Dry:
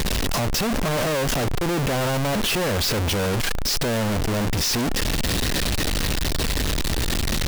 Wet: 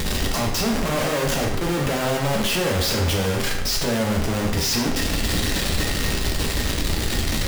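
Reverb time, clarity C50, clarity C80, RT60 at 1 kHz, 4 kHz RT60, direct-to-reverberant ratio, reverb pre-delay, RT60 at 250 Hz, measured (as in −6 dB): 0.80 s, 5.0 dB, 8.0 dB, 0.80 s, 0.70 s, −0.5 dB, 7 ms, 0.80 s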